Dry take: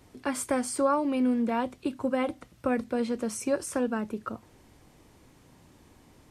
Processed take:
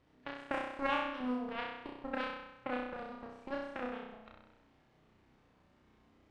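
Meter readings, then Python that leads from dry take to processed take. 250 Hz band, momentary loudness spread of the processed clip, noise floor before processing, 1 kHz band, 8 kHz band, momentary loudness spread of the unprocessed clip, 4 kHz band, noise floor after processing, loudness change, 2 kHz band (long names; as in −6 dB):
−13.5 dB, 13 LU, −59 dBFS, −7.0 dB, below −30 dB, 9 LU, −3.0 dB, −69 dBFS, −10.0 dB, −2.0 dB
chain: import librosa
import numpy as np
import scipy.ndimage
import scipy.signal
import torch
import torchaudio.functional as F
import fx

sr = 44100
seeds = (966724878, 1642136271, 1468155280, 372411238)

y = x + 0.5 * 10.0 ** (-36.5 / 20.0) * np.sign(x)
y = fx.cheby_harmonics(y, sr, harmonics=(3, 6), levels_db=(-9, -33), full_scale_db=-13.5)
y = fx.room_flutter(y, sr, wall_m=5.5, rt60_s=0.94)
y = fx.env_lowpass(y, sr, base_hz=2800.0, full_db=-16.5)
y = y * 10.0 ** (-5.0 / 20.0)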